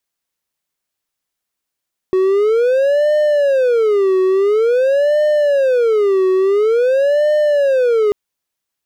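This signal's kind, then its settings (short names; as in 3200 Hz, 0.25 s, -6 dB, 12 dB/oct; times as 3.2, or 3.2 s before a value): siren wail 374–603 Hz 0.48/s triangle -8.5 dBFS 5.99 s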